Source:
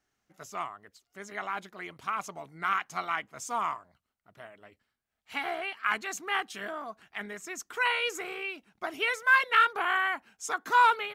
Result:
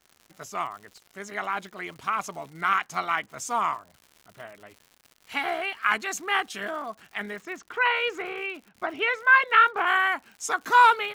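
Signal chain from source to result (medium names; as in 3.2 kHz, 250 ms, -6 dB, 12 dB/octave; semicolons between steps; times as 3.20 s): 7.36–9.87 s: low-pass 2.8 kHz 12 dB/octave; crackle 150 per s -45 dBFS; trim +5 dB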